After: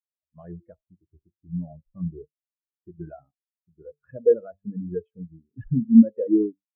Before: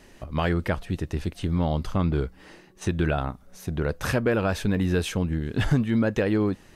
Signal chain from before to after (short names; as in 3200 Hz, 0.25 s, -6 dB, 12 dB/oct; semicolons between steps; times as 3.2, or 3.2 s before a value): in parallel at -7.5 dB: sample gate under -26.5 dBFS; on the sum: low shelf 200 Hz -8.5 dB; de-hum 48.79 Hz, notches 22; spectral expander 4:1; gain +5.5 dB